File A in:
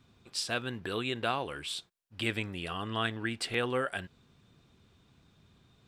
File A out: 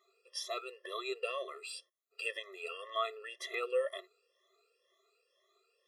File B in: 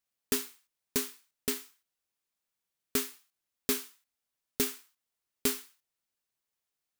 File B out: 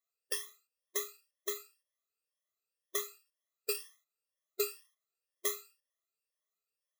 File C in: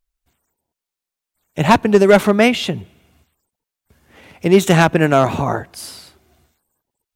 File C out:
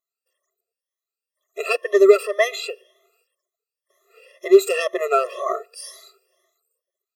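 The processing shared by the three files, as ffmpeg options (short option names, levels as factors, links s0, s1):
-af "afftfilt=real='re*pow(10,18/40*sin(2*PI*(1.2*log(max(b,1)*sr/1024/100)/log(2)-(2)*(pts-256)/sr)))':imag='im*pow(10,18/40*sin(2*PI*(1.2*log(max(b,1)*sr/1024/100)/log(2)-(2)*(pts-256)/sr)))':win_size=1024:overlap=0.75,afftfilt=real='re*eq(mod(floor(b*sr/1024/350),2),1)':imag='im*eq(mod(floor(b*sr/1024/350),2),1)':win_size=1024:overlap=0.75,volume=0.531"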